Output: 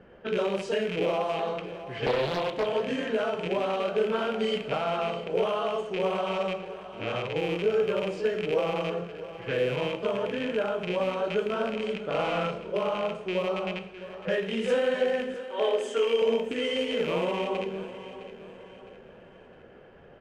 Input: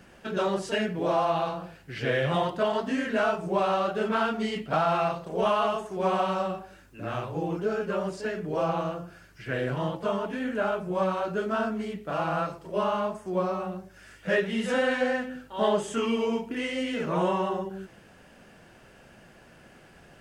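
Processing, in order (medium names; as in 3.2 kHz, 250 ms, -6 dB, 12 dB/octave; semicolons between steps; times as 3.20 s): rattle on loud lows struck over -36 dBFS, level -22 dBFS; 15.34–16.22 s: steep high-pass 300 Hz 36 dB/octave; compression 4:1, threshold -27 dBFS, peak gain reduction 6.5 dB; small resonant body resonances 470/3100 Hz, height 12 dB, ringing for 30 ms; level-controlled noise filter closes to 1.7 kHz, open at -22 dBFS; 12.10–12.71 s: doubling 41 ms -3 dB; feedback delay 660 ms, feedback 43%, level -14 dB; reverberation, pre-delay 3 ms, DRR 9 dB; 2.06–2.66 s: loudspeaker Doppler distortion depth 0.6 ms; trim -2 dB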